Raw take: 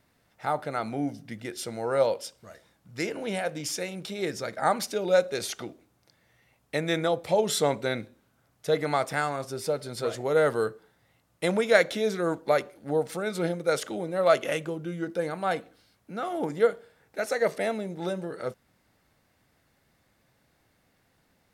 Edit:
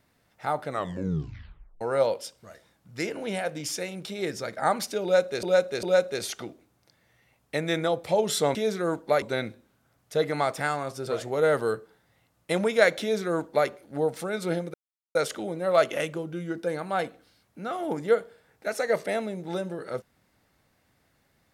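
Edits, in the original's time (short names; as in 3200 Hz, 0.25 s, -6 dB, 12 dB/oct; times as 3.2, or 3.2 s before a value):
0.67 tape stop 1.14 s
5.03–5.43 loop, 3 plays
9.6–10 cut
11.94–12.61 copy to 7.75
13.67 insert silence 0.41 s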